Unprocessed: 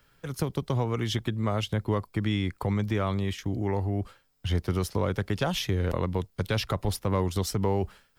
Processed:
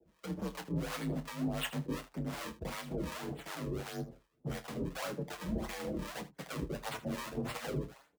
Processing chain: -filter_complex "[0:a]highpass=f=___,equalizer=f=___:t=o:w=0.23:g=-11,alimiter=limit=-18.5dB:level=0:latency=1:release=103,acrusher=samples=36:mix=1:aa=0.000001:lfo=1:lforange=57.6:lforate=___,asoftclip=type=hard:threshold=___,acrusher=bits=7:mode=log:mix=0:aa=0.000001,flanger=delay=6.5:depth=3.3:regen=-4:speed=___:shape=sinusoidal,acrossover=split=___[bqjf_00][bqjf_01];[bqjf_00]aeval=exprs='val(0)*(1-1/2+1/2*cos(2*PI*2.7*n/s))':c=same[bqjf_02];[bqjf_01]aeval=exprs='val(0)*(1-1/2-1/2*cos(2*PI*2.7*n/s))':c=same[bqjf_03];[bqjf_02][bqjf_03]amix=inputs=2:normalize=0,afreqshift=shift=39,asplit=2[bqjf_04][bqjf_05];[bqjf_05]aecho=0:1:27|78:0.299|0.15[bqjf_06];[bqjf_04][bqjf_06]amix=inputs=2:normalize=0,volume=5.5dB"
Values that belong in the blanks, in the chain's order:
190, 340, 1.7, -33.5dB, 0.35, 580